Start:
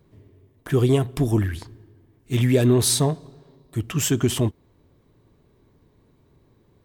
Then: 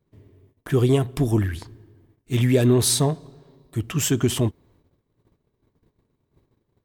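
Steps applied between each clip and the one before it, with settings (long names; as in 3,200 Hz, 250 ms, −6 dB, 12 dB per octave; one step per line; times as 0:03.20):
noise gate −56 dBFS, range −15 dB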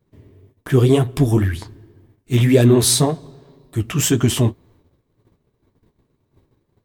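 flanger 1.9 Hz, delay 7.5 ms, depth 9.3 ms, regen −33%
level +8.5 dB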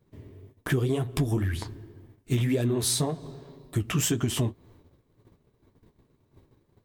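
downward compressor 16 to 1, threshold −22 dBFS, peak gain reduction 15.5 dB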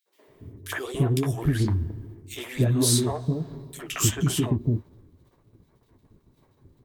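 three-band delay without the direct sound highs, mids, lows 60/280 ms, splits 440/2,400 Hz
level +3.5 dB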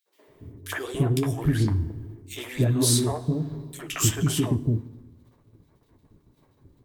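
feedback delay network reverb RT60 0.83 s, low-frequency decay 1.6×, high-frequency decay 0.85×, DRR 15 dB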